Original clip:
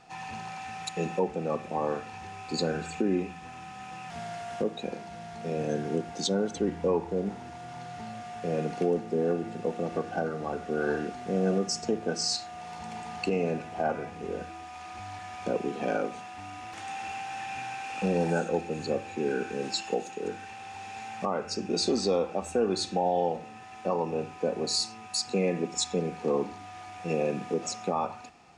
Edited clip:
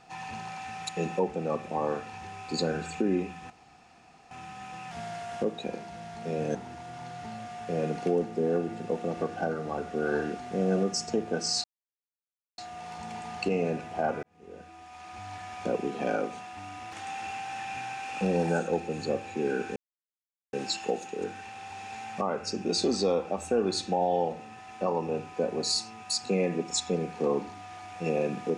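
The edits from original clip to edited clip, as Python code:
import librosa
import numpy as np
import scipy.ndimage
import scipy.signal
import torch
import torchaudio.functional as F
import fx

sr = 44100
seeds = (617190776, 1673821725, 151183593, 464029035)

y = fx.edit(x, sr, fx.insert_room_tone(at_s=3.5, length_s=0.81),
    fx.cut(start_s=5.74, length_s=1.56),
    fx.insert_silence(at_s=12.39, length_s=0.94),
    fx.fade_in_span(start_s=14.04, length_s=1.13),
    fx.insert_silence(at_s=19.57, length_s=0.77), tone=tone)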